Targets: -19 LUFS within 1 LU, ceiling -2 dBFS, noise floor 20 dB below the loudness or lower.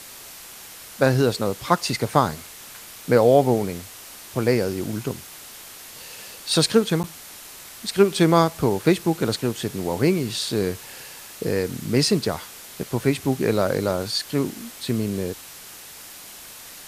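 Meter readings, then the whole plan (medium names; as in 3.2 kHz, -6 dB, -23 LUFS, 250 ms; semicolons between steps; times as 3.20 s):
dropouts 1; longest dropout 9.5 ms; noise floor -42 dBFS; noise floor target -43 dBFS; loudness -22.5 LUFS; peak level -2.0 dBFS; loudness target -19.0 LUFS
-> interpolate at 7.03 s, 9.5 ms; noise reduction 6 dB, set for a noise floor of -42 dBFS; trim +3.5 dB; peak limiter -2 dBFS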